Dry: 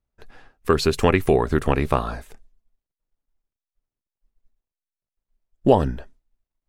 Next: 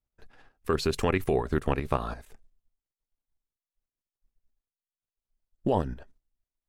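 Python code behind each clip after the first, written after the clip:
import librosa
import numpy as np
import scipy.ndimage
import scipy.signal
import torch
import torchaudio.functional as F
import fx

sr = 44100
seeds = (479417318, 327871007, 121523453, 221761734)

y = fx.level_steps(x, sr, step_db=10)
y = y * 10.0 ** (-3.5 / 20.0)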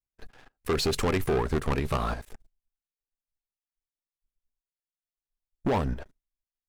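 y = 10.0 ** (-14.5 / 20.0) * np.tanh(x / 10.0 ** (-14.5 / 20.0))
y = fx.leveller(y, sr, passes=3)
y = y * 10.0 ** (-4.5 / 20.0)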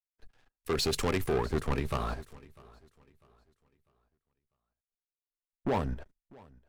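y = fx.echo_feedback(x, sr, ms=648, feedback_pct=47, wet_db=-17.5)
y = fx.band_widen(y, sr, depth_pct=40)
y = y * 10.0 ** (-4.5 / 20.0)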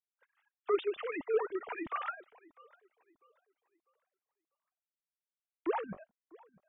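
y = fx.sine_speech(x, sr)
y = fx.comb_cascade(y, sr, direction='rising', hz=1.6)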